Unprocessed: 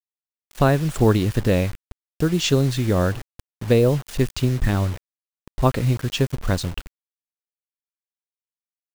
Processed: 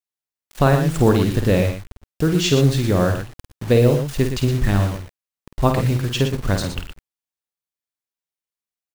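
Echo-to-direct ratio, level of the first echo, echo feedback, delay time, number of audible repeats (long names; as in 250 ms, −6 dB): −4.5 dB, −7.0 dB, repeats not evenly spaced, 50 ms, 2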